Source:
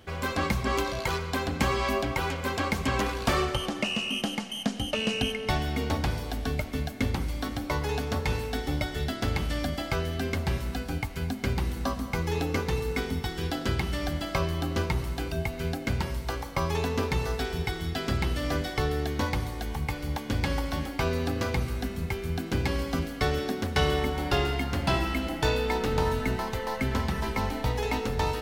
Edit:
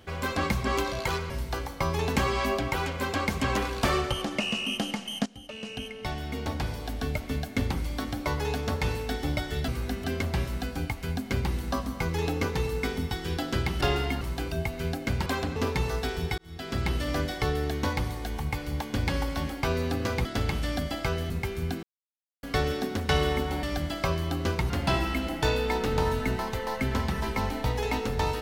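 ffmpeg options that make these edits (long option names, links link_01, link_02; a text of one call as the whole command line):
ffmpeg -i in.wav -filter_complex "[0:a]asplit=17[link_01][link_02][link_03][link_04][link_05][link_06][link_07][link_08][link_09][link_10][link_11][link_12][link_13][link_14][link_15][link_16][link_17];[link_01]atrim=end=1.302[link_18];[link_02]atrim=start=16.058:end=16.922[link_19];[link_03]atrim=start=1.598:end=4.7,asetpts=PTS-STARTPTS,afade=type=out:start_time=3.098:duration=0.004:curve=hsin:silence=0.141254[link_20];[link_04]atrim=start=4.7:end=9.122,asetpts=PTS-STARTPTS,afade=type=in:duration=2.02:silence=0.141254[link_21];[link_05]atrim=start=21.608:end=21.972[link_22];[link_06]atrim=start=10.168:end=13.942[link_23];[link_07]atrim=start=24.298:end=24.702[link_24];[link_08]atrim=start=15.008:end=16.062[link_25];[link_09]atrim=start=1.298:end=1.602[link_26];[link_10]atrim=start=16.918:end=17.74,asetpts=PTS-STARTPTS,afade=type=out:start_time=0.818:duration=0.004:curve=hsin[link_27];[link_11]atrim=start=17.74:end=21.612,asetpts=PTS-STARTPTS,afade=type=in:duration=0.49[link_28];[link_12]atrim=start=9.118:end=10.172[link_29];[link_13]atrim=start=21.968:end=22.5,asetpts=PTS-STARTPTS,afade=type=out:start_time=0.528:duration=0.004:curve=hsin[link_30];[link_14]atrim=start=22.5:end=23.1,asetpts=PTS-STARTPTS,volume=0[link_31];[link_15]atrim=start=23.1:end=24.302,asetpts=PTS-STARTPTS,afade=type=in:duration=0.004:curve=hsin[link_32];[link_16]atrim=start=13.938:end=15.012[link_33];[link_17]atrim=start=24.698[link_34];[link_18][link_19]acrossfade=duration=0.004:curve1=hsin:curve2=hsin[link_35];[link_20][link_21]concat=n=2:v=0:a=1[link_36];[link_35][link_36]acrossfade=duration=0.004:curve1=hsin:curve2=hsin[link_37];[link_37][link_22]acrossfade=duration=0.004:curve1=hsin:curve2=hsin[link_38];[link_38][link_23]acrossfade=duration=0.004:curve1=hsin:curve2=hsin[link_39];[link_39][link_24]acrossfade=duration=0.004:curve1=hsin:curve2=hsin[link_40];[link_40][link_25]acrossfade=duration=0.004:curve1=hsin:curve2=hsin[link_41];[link_41][link_26]acrossfade=duration=0.004:curve1=hsin:curve2=hsin[link_42];[link_27][link_28]concat=n=2:v=0:a=1[link_43];[link_42][link_43]acrossfade=duration=0.004:curve1=hsin:curve2=hsin[link_44];[link_44][link_29]acrossfade=duration=0.004:curve1=hsin:curve2=hsin[link_45];[link_30][link_31][link_32]concat=n=3:v=0:a=1[link_46];[link_45][link_46]acrossfade=duration=0.004:curve1=hsin:curve2=hsin[link_47];[link_47][link_33]acrossfade=duration=0.004:curve1=hsin:curve2=hsin[link_48];[link_48][link_34]acrossfade=duration=0.004:curve1=hsin:curve2=hsin" out.wav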